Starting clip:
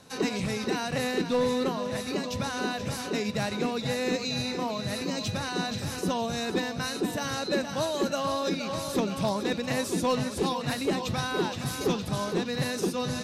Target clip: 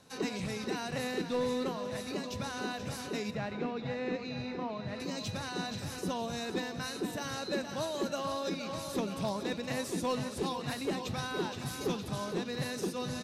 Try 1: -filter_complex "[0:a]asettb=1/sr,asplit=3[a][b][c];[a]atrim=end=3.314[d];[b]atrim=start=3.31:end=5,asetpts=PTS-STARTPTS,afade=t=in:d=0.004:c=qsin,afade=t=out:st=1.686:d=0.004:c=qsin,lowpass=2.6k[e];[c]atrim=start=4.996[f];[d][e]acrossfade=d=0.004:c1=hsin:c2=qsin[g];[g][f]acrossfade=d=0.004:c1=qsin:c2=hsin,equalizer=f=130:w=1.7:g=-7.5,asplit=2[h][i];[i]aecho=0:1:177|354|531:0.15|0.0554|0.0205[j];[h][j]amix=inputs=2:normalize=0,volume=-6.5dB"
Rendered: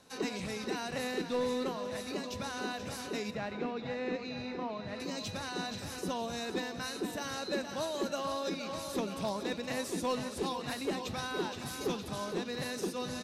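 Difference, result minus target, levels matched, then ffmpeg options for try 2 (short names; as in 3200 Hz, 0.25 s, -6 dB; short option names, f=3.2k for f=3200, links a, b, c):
125 Hz band -4.5 dB
-filter_complex "[0:a]asettb=1/sr,asplit=3[a][b][c];[a]atrim=end=3.314[d];[b]atrim=start=3.31:end=5,asetpts=PTS-STARTPTS,afade=t=in:d=0.004:c=qsin,afade=t=out:st=1.686:d=0.004:c=qsin,lowpass=2.6k[e];[c]atrim=start=4.996[f];[d][e]acrossfade=d=0.004:c1=hsin:c2=qsin[g];[g][f]acrossfade=d=0.004:c1=qsin:c2=hsin,asplit=2[h][i];[i]aecho=0:1:177|354|531:0.15|0.0554|0.0205[j];[h][j]amix=inputs=2:normalize=0,volume=-6.5dB"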